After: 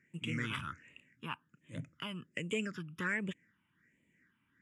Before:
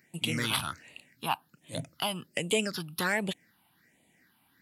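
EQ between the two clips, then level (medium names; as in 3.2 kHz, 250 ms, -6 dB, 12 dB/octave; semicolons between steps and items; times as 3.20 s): distance through air 120 m; peaking EQ 7.1 kHz +7 dB 0.28 oct; static phaser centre 1.8 kHz, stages 4; -3.5 dB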